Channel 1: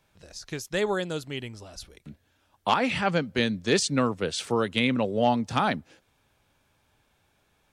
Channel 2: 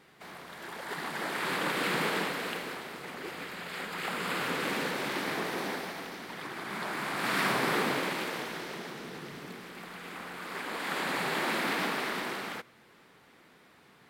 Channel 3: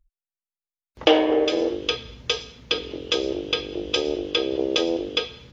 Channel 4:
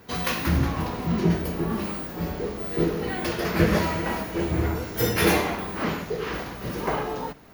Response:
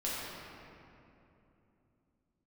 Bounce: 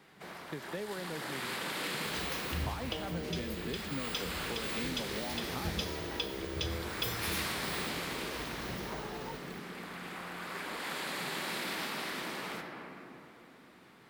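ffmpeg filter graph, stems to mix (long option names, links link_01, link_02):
-filter_complex "[0:a]lowpass=1500,volume=-2dB[link_01];[1:a]volume=-3.5dB,asplit=2[link_02][link_03];[link_03]volume=-7.5dB[link_04];[2:a]adelay=1850,volume=-9dB[link_05];[3:a]acompressor=mode=upward:threshold=-22dB:ratio=2.5,adelay=2050,volume=-11.5dB[link_06];[link_01][link_05]amix=inputs=2:normalize=0,highpass=frequency=150:width=0.5412,highpass=frequency=150:width=1.3066,acompressor=threshold=-27dB:ratio=6,volume=0dB[link_07];[4:a]atrim=start_sample=2205[link_08];[link_04][link_08]afir=irnorm=-1:irlink=0[link_09];[link_02][link_06][link_07][link_09]amix=inputs=4:normalize=0,acrossover=split=120|3000[link_10][link_11][link_12];[link_11]acompressor=threshold=-38dB:ratio=5[link_13];[link_10][link_13][link_12]amix=inputs=3:normalize=0"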